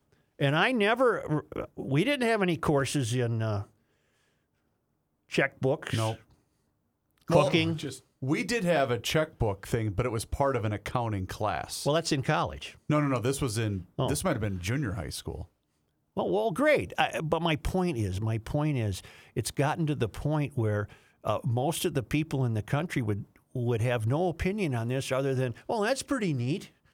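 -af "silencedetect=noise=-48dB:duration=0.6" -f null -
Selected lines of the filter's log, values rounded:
silence_start: 3.66
silence_end: 5.29 | silence_duration: 1.63
silence_start: 6.22
silence_end: 7.18 | silence_duration: 0.96
silence_start: 15.45
silence_end: 16.16 | silence_duration: 0.71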